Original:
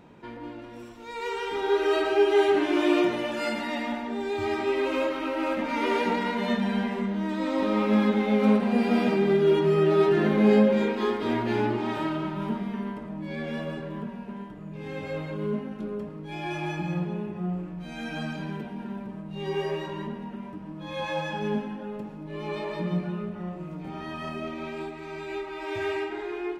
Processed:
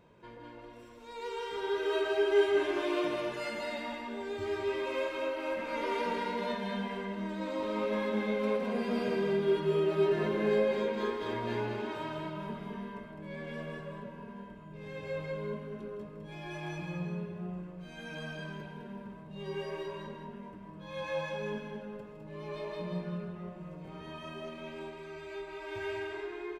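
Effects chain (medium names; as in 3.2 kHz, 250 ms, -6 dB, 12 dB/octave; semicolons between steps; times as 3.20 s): comb 1.9 ms, depth 49%; loudspeakers at several distances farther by 55 m -10 dB, 71 m -5 dB; trim -9 dB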